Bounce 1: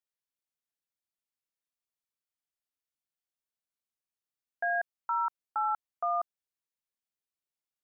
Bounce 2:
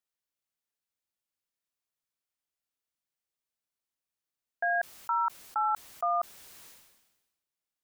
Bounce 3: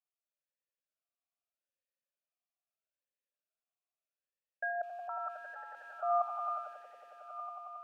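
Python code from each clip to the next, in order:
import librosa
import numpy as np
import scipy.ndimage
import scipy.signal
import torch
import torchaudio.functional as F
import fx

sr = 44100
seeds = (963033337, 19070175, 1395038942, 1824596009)

y1 = fx.sustainer(x, sr, db_per_s=51.0)
y1 = y1 * librosa.db_to_amplitude(1.5)
y2 = fx.echo_swell(y1, sr, ms=91, loudest=5, wet_db=-7.5)
y2 = fx.vowel_sweep(y2, sr, vowels='a-e', hz=0.79)
y2 = y2 * librosa.db_to_amplitude(1.5)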